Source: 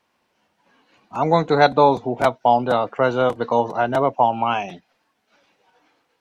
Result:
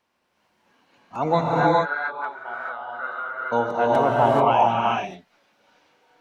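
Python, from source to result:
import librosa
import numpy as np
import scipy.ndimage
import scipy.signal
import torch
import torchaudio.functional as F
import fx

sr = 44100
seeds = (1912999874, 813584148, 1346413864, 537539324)

y = fx.bandpass_q(x, sr, hz=1500.0, q=5.4, at=(1.4, 3.51), fade=0.02)
y = fx.rev_gated(y, sr, seeds[0], gate_ms=460, shape='rising', drr_db=-4.5)
y = y * librosa.db_to_amplitude(-4.5)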